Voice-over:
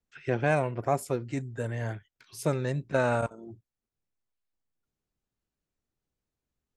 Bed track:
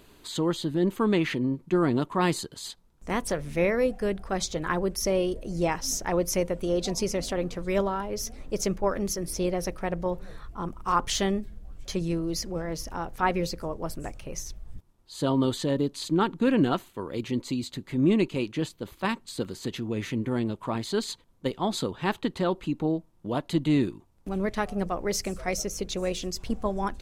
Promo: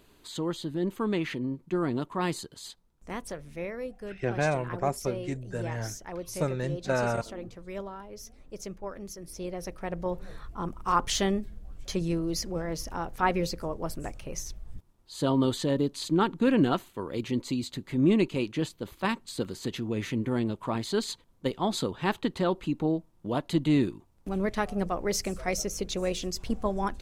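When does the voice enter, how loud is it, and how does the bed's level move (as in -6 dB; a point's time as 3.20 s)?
3.95 s, -1.5 dB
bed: 2.69 s -5 dB
3.69 s -12 dB
9.16 s -12 dB
10.27 s -0.5 dB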